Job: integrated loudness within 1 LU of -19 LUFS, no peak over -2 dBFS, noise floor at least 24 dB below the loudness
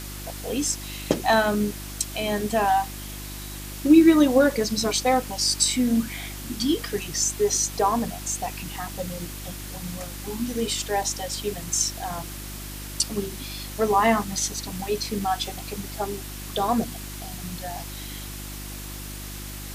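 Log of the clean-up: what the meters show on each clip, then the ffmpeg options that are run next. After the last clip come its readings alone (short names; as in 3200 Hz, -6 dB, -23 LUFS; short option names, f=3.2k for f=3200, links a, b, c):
hum 50 Hz; harmonics up to 350 Hz; hum level -36 dBFS; noise floor -36 dBFS; noise floor target -49 dBFS; loudness -24.5 LUFS; peak -4.0 dBFS; loudness target -19.0 LUFS
-> -af "bandreject=f=50:t=h:w=4,bandreject=f=100:t=h:w=4,bandreject=f=150:t=h:w=4,bandreject=f=200:t=h:w=4,bandreject=f=250:t=h:w=4,bandreject=f=300:t=h:w=4,bandreject=f=350:t=h:w=4"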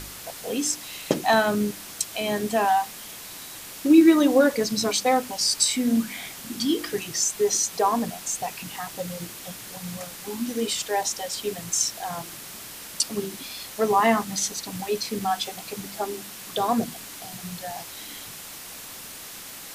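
hum none; noise floor -40 dBFS; noise floor target -49 dBFS
-> -af "afftdn=nr=9:nf=-40"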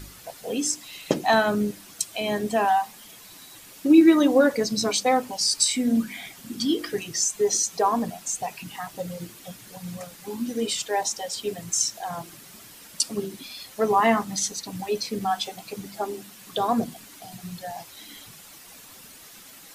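noise floor -47 dBFS; noise floor target -48 dBFS
-> -af "afftdn=nr=6:nf=-47"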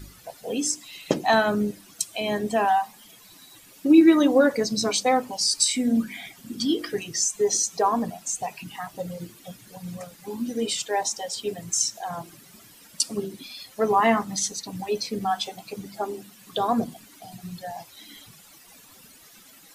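noise floor -51 dBFS; loudness -24.0 LUFS; peak -5.0 dBFS; loudness target -19.0 LUFS
-> -af "volume=5dB,alimiter=limit=-2dB:level=0:latency=1"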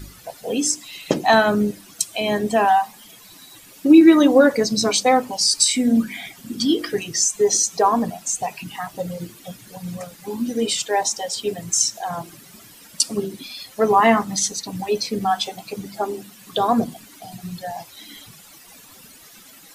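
loudness -19.0 LUFS; peak -2.0 dBFS; noise floor -46 dBFS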